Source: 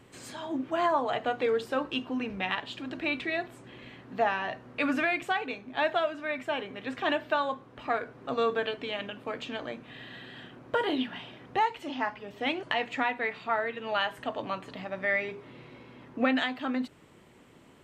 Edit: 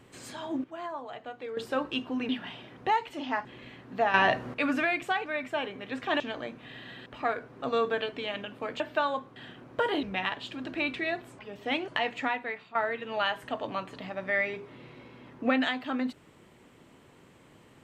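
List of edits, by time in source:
0.64–1.57 gain -11.5 dB
2.29–3.65 swap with 10.98–12.14
4.34–4.74 gain +10.5 dB
5.46–6.21 cut
7.15–7.71 swap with 9.45–10.31
12.75–13.5 fade out equal-power, to -13.5 dB

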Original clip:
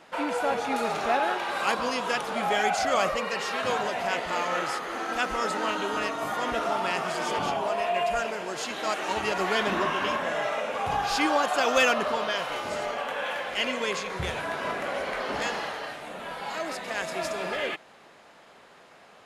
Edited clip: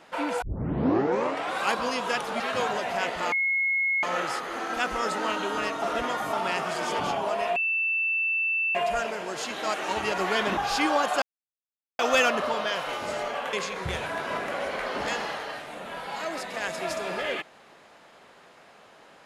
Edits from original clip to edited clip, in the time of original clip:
0.42 tape start 1.20 s
2.4–3.5 cut
4.42 add tone 2170 Hz -22 dBFS 0.71 s
6.21–6.72 reverse
7.95 add tone 2660 Hz -23 dBFS 1.19 s
9.77–10.97 cut
11.62 insert silence 0.77 s
13.16–13.87 cut

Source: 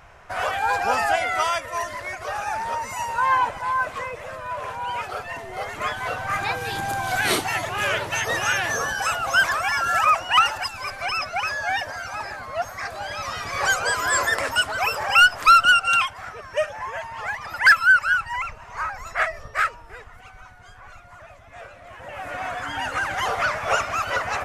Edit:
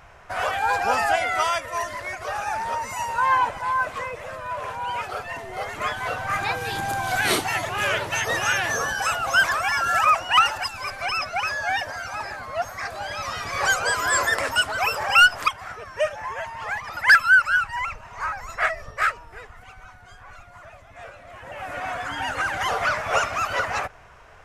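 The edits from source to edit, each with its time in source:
15.48–16.05 cut

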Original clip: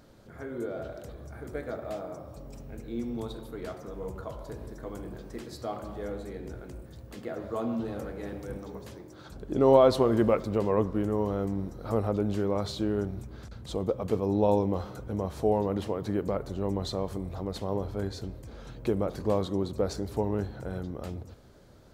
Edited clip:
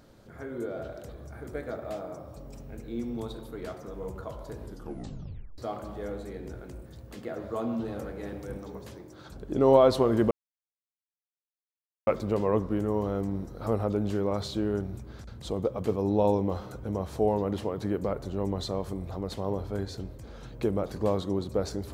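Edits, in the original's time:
4.63 tape stop 0.95 s
10.31 insert silence 1.76 s

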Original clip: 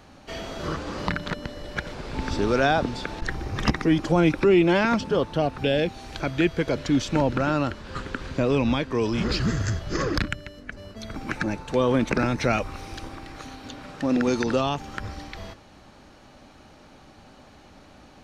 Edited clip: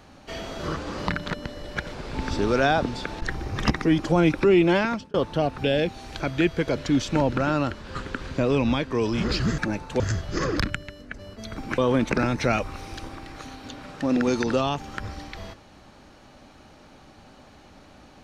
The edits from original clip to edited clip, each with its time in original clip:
4.75–5.14 fade out
11.36–11.78 move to 9.58

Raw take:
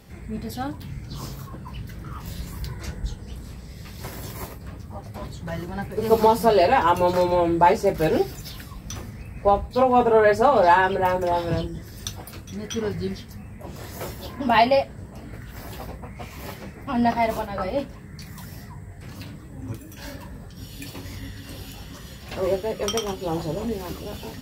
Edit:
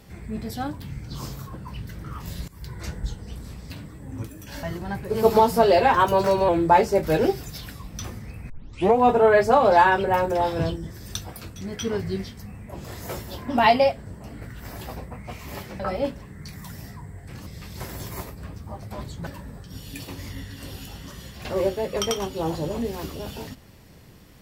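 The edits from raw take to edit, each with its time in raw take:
2.48–2.83 fade in, from -20.5 dB
3.7–5.5 swap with 19.2–20.13
6.8–7.4 speed 108%
9.41 tape start 0.48 s
16.71–17.53 cut

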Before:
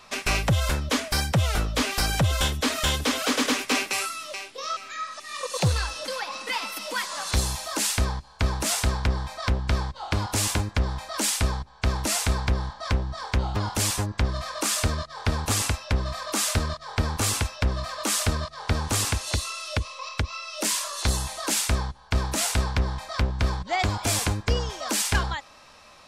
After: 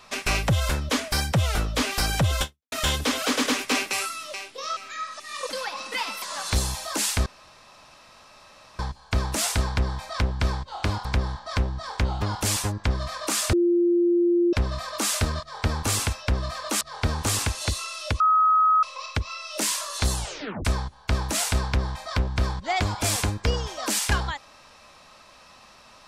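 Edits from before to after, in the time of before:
2.42–2.72 fade out exponential
5.49–6.04 cut
6.77–7.03 cut
8.07 insert room tone 1.53 s
10.33–12.39 cut
14.87–15.87 bleep 347 Hz -17 dBFS
18.15–18.47 cut
19.86 add tone 1270 Hz -15.5 dBFS 0.63 s
21.19 tape stop 0.49 s

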